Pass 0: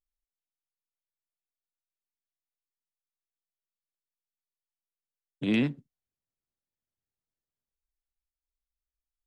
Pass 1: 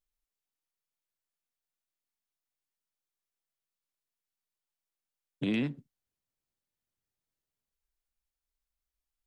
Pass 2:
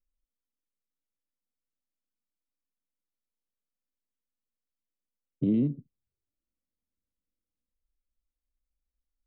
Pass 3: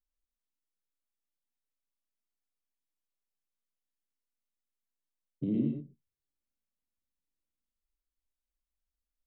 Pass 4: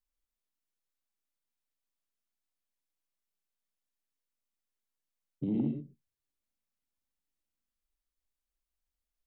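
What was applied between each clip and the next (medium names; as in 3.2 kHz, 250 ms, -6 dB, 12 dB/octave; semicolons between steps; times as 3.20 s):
compression 3:1, threshold -31 dBFS, peak gain reduction 7 dB; trim +2 dB
touch-sensitive flanger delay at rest 3.9 ms; boxcar filter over 52 samples; trim +7 dB
gated-style reverb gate 150 ms rising, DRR 3 dB; trim -6.5 dB
saturation -20 dBFS, distortion -23 dB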